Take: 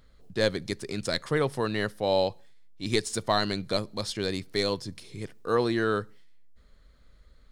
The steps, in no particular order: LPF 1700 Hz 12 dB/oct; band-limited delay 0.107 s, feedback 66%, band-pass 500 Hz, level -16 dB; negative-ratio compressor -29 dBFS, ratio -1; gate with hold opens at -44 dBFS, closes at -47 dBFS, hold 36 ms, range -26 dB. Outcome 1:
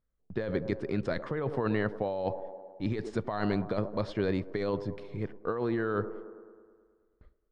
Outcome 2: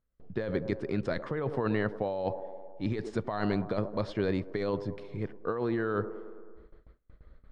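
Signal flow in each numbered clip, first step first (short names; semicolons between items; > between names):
gate with hold > band-limited delay > negative-ratio compressor > LPF; band-limited delay > negative-ratio compressor > gate with hold > LPF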